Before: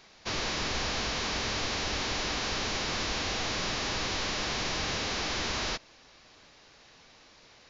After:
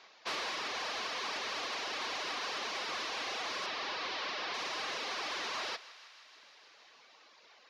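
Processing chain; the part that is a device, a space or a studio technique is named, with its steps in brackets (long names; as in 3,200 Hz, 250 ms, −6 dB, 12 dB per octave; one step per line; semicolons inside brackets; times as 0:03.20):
reverb reduction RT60 1.3 s
intercom (band-pass filter 460–4,800 Hz; parametric band 1,100 Hz +4 dB 0.24 octaves; soft clipping −29 dBFS, distortion −22 dB)
0:03.66–0:04.54: low-pass filter 5,500 Hz 24 dB per octave
feedback echo with a high-pass in the loop 157 ms, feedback 82%, high-pass 610 Hz, level −18 dB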